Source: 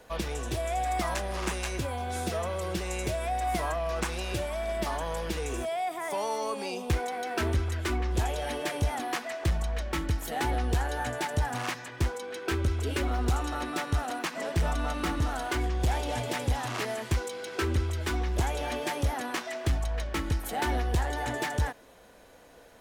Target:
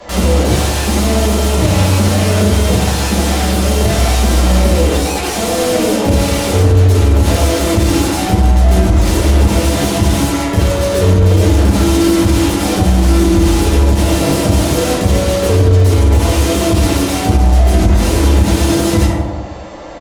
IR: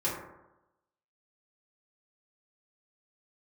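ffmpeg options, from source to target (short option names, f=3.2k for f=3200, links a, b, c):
-filter_complex "[0:a]asetrate=50274,aresample=44100,aresample=16000,asoftclip=type=hard:threshold=-29.5dB,aresample=44100,aecho=1:1:101|202:0.224|0.0403,acrossover=split=550[a][b];[b]aeval=exprs='(mod(66.8*val(0)+1,2)-1)/66.8':c=same[c];[a][c]amix=inputs=2:normalize=0[d];[1:a]atrim=start_sample=2205,afade=t=out:st=0.43:d=0.01,atrim=end_sample=19404,asetrate=25137,aresample=44100[e];[d][e]afir=irnorm=-1:irlink=0,alimiter=level_in=13dB:limit=-1dB:release=50:level=0:latency=1,volume=-1dB"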